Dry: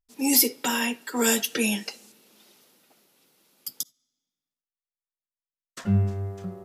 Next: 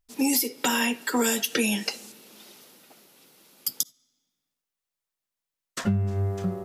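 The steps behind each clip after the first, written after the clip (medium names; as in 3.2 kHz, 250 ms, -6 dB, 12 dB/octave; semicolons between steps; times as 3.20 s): compression 12:1, threshold -28 dBFS, peak gain reduction 15 dB; trim +7.5 dB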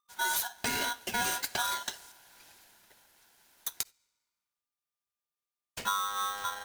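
polarity switched at an audio rate 1.2 kHz; trim -7.5 dB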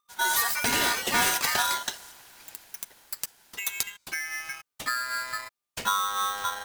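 ever faster or slower copies 216 ms, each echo +4 st, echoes 3; trim +5 dB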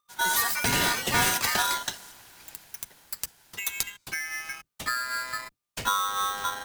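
octave divider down 1 oct, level +2 dB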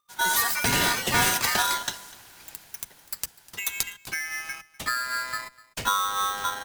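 delay 249 ms -21.5 dB; trim +1.5 dB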